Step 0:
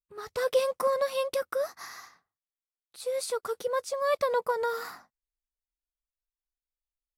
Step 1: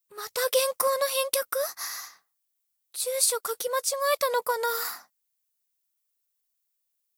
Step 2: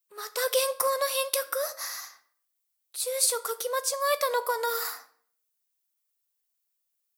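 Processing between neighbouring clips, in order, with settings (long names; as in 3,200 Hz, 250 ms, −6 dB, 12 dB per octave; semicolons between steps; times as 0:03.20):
RIAA equalisation recording; level +2.5 dB
high-pass filter 310 Hz 12 dB per octave; on a send at −11.5 dB: convolution reverb RT60 0.60 s, pre-delay 4 ms; on the sum: level −1 dB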